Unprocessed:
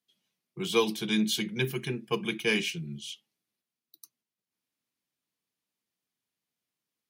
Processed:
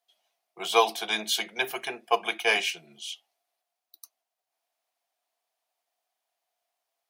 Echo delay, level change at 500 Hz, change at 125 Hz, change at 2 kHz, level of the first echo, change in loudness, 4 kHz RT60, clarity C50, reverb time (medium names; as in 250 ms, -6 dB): no echo, +1.5 dB, under -20 dB, +4.5 dB, no echo, +3.0 dB, no reverb, no reverb, no reverb